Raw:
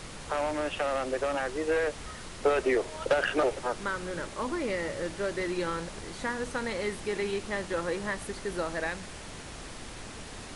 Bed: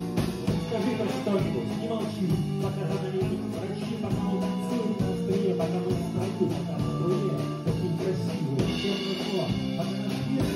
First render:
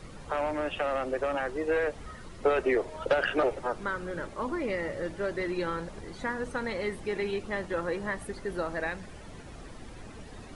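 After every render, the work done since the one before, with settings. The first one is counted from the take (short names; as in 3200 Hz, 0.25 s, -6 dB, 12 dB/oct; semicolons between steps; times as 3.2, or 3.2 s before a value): denoiser 11 dB, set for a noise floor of -43 dBFS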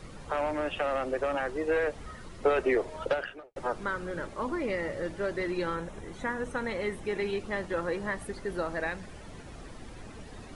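3.04–3.56 fade out quadratic; 5.74–7.18 bell 4600 Hz -15 dB -> -6.5 dB 0.21 oct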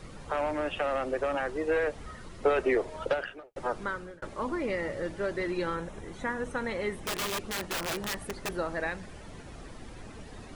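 3.73–4.22 fade out equal-power; 6.93–8.49 wrapped overs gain 27.5 dB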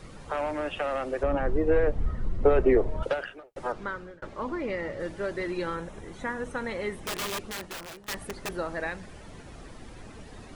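1.23–3.03 tilt -4 dB/oct; 3.72–5 air absorption 75 m; 7.36–8.08 fade out, to -19.5 dB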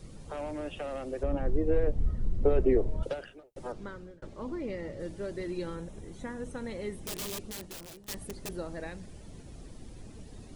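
bell 1400 Hz -13 dB 2.6 oct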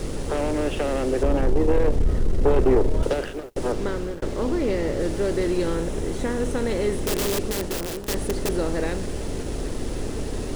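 per-bin compression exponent 0.6; sample leveller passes 2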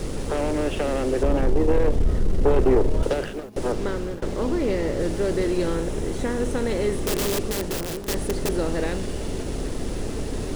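add bed -14 dB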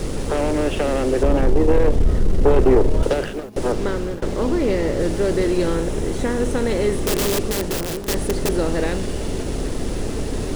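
gain +4 dB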